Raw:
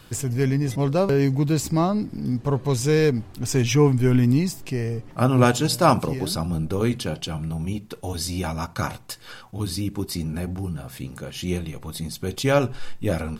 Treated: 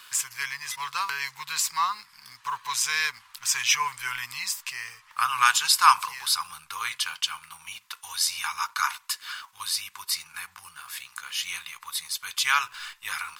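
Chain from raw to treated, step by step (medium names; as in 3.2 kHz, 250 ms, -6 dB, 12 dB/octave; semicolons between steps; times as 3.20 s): elliptic high-pass 1 kHz, stop band 40 dB; in parallel at -10 dB: bit crusher 8-bit; on the sum: trim +3.5 dB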